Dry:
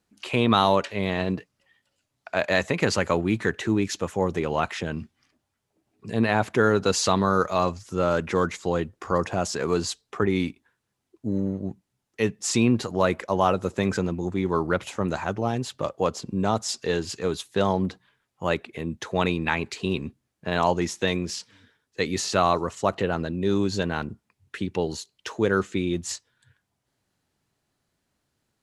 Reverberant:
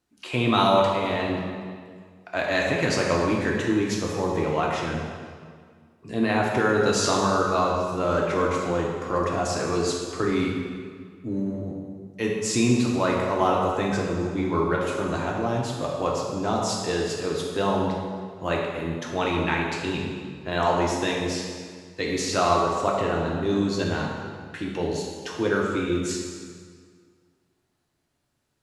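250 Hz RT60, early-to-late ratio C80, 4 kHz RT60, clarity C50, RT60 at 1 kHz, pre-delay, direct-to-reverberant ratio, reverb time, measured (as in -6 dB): 2.1 s, 2.5 dB, 1.5 s, 1.0 dB, 1.9 s, 3 ms, -2.5 dB, 1.9 s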